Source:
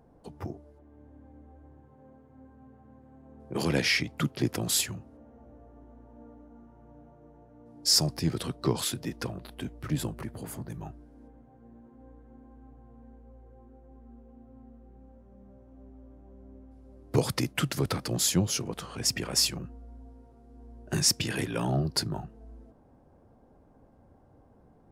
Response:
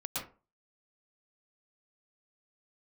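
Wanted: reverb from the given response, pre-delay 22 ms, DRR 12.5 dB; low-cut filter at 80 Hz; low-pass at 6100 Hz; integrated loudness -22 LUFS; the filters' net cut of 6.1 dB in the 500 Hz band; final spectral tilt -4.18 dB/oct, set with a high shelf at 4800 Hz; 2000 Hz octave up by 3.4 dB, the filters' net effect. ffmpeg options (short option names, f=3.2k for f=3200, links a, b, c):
-filter_complex "[0:a]highpass=80,lowpass=6.1k,equalizer=f=500:t=o:g=-8.5,equalizer=f=2k:t=o:g=6,highshelf=f=4.8k:g=-8,asplit=2[a][b];[1:a]atrim=start_sample=2205,adelay=22[c];[b][c]afir=irnorm=-1:irlink=0,volume=-15.5dB[d];[a][d]amix=inputs=2:normalize=0,volume=9.5dB"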